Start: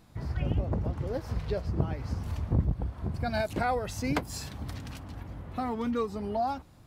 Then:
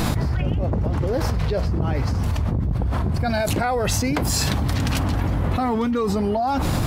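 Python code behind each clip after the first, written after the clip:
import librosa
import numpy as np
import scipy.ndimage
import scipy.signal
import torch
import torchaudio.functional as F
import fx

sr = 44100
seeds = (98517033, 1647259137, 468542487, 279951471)

y = fx.env_flatten(x, sr, amount_pct=100)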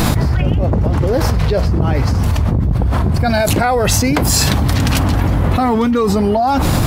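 y = fx.high_shelf(x, sr, hz=9700.0, db=4.0)
y = y * 10.0 ** (7.5 / 20.0)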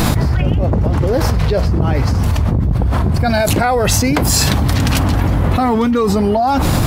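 y = x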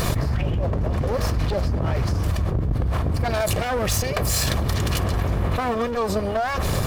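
y = fx.lower_of_two(x, sr, delay_ms=1.7)
y = y * 10.0 ** (-7.0 / 20.0)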